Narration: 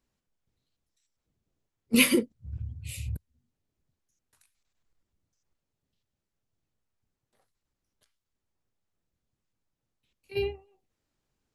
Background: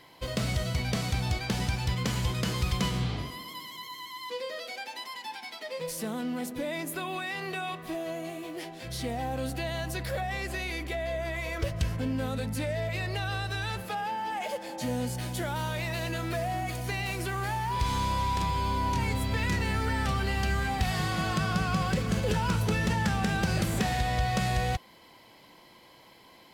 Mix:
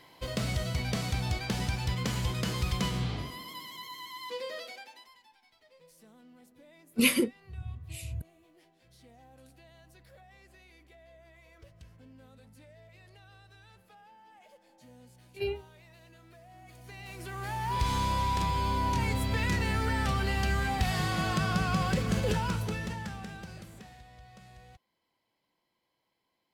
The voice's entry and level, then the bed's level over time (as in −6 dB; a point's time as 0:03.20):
5.05 s, −3.0 dB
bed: 0:04.59 −2 dB
0:05.33 −24 dB
0:16.43 −24 dB
0:17.72 −0.5 dB
0:22.28 −0.5 dB
0:24.09 −25.5 dB